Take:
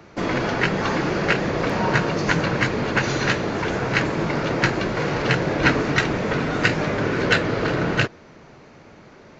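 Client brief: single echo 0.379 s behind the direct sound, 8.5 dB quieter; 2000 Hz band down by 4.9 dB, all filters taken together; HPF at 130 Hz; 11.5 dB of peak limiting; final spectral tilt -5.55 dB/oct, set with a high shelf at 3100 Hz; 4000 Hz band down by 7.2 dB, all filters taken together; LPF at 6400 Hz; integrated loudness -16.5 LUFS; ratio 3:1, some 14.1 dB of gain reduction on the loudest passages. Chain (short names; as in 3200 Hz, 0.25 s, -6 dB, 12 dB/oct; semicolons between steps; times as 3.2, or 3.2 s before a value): HPF 130 Hz; LPF 6400 Hz; bell 2000 Hz -4 dB; high shelf 3100 Hz -5.5 dB; bell 4000 Hz -3.5 dB; compressor 3:1, threshold -37 dBFS; limiter -31 dBFS; echo 0.379 s -8.5 dB; gain +23 dB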